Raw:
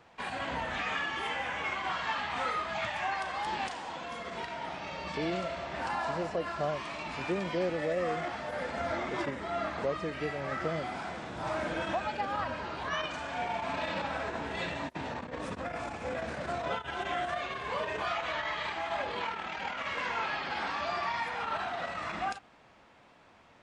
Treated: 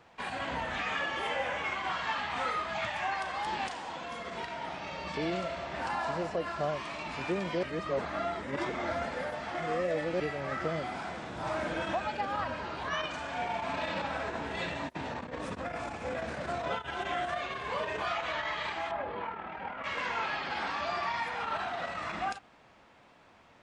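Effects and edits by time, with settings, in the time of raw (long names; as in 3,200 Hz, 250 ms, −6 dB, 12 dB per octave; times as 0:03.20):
0:00.99–0:01.58: parametric band 560 Hz +10.5 dB 0.39 octaves
0:07.63–0:10.20: reverse
0:18.91–0:19.84: Bessel low-pass filter 1,300 Hz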